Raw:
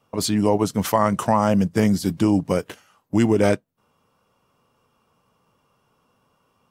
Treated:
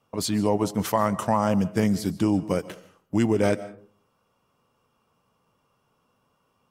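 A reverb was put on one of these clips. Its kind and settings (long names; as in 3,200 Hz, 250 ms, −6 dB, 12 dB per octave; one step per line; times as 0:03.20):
comb and all-pass reverb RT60 0.52 s, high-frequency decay 0.4×, pre-delay 100 ms, DRR 16.5 dB
level −4 dB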